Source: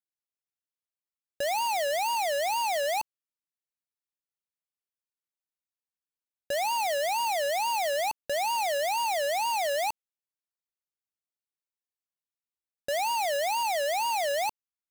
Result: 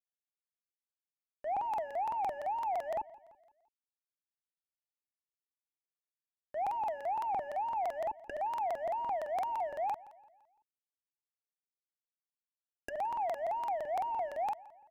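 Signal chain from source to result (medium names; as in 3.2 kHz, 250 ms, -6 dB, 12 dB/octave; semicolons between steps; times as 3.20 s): companding laws mixed up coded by A; low-pass that closes with the level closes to 710 Hz, closed at -30.5 dBFS; static phaser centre 810 Hz, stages 8; on a send: feedback delay 167 ms, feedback 47%, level -20 dB; on the sum: crackling interface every 0.17 s, samples 2048, repeat, from 0.33 s; trim +1.5 dB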